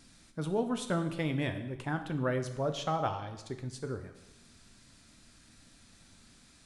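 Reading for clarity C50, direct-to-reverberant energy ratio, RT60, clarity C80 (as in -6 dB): 10.0 dB, 7.0 dB, 0.95 s, 12.5 dB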